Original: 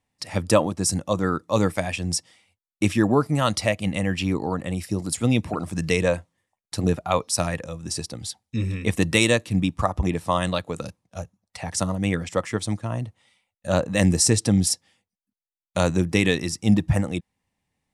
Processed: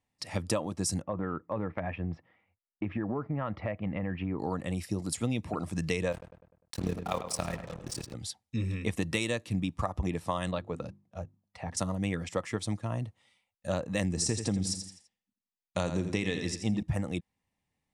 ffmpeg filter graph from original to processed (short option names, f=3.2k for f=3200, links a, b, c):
-filter_complex "[0:a]asettb=1/sr,asplit=3[a][b][c];[a]atrim=end=1.024[d];[b]atrim=start=1.02:end=4.39,asetpts=PTS-STARTPTS,afade=t=in:d=0.004:c=qsin,afade=t=out:st=3.366:d=0.004:c=qsin,lowpass=f=2k:w=0.5412,lowpass=f=2k:w=1.3066,acompressor=threshold=-22dB:ratio=6:attack=3.2:release=140:knee=1:detection=peak[e];[c]atrim=start=4.386[f];[d][e]acrossfade=d=0.004:c1=hsin:c2=qsin[g];[g][f]acrossfade=d=0.004:c1=qsin:c2=hsin,asettb=1/sr,asplit=3[h][i][j];[h]atrim=end=6.124[k];[i]atrim=start=6.12:end=8.14,asetpts=PTS-STARTPTS,afade=t=in:d=0.004:c=qsin,afade=t=out:st=2.016:d=0.004:c=qsin,tremolo=f=36:d=0.824,acrusher=bits=5:mix=0:aa=0.5,asplit=2[l][m];[m]adelay=100,lowpass=f=2.7k:p=1,volume=-10.5dB,asplit=2[n][o];[o]adelay=100,lowpass=f=2.7k:p=1,volume=0.5,asplit=2[p][q];[q]adelay=100,lowpass=f=2.7k:p=1,volume=0.5,asplit=2[r][s];[s]adelay=100,lowpass=f=2.7k:p=1,volume=0.5,asplit=2[t][u];[u]adelay=100,lowpass=f=2.7k:p=1,volume=0.5[v];[l][n][p][r][t][v]amix=inputs=6:normalize=0,atrim=end_sample=89082[w];[j]atrim=start=8.136[x];[k][w]acrossfade=d=0.004:c1=hsin:c2=qsin[y];[y][x]acrossfade=d=0.004:c1=qsin:c2=hsin,asettb=1/sr,asplit=3[z][aa][ab];[z]atrim=end=10.514[ac];[aa]atrim=start=10.51:end=11.77,asetpts=PTS-STARTPTS,afade=t=in:d=0.004:c=qsin,afade=t=out:st=1.256:d=0.004:c=qsin,lowpass=f=1.5k:p=1,bandreject=f=50:t=h:w=6,bandreject=f=100:t=h:w=6,bandreject=f=150:t=h:w=6,bandreject=f=200:t=h:w=6,bandreject=f=250:t=h:w=6,bandreject=f=300:t=h:w=6,bandreject=f=350:t=h:w=6[ad];[ab]atrim=start=11.766[ae];[ac][ad]acrossfade=d=0.004:c1=hsin:c2=qsin[af];[af][ae]acrossfade=d=0.004:c1=qsin:c2=hsin,asettb=1/sr,asplit=3[ag][ah][ai];[ag]atrim=end=14.094[aj];[ah]atrim=start=14.09:end=16.83,asetpts=PTS-STARTPTS,afade=t=in:d=0.004:c=qsin,afade=t=out:st=2.736:d=0.004:c=qsin,lowpass=f=9.3k:w=0.5412,lowpass=f=9.3k:w=1.3066,aecho=1:1:84|168|252|336:0.316|0.123|0.0481|0.0188,atrim=end_sample=120834[ak];[ai]atrim=start=16.826[al];[aj][ak]acrossfade=d=0.004:c1=hsin:c2=qsin[am];[am][al]acrossfade=d=0.004:c1=qsin:c2=hsin,highshelf=f=8.7k:g=-4,bandreject=f=1.5k:w=19,acompressor=threshold=-21dB:ratio=6,volume=-5dB"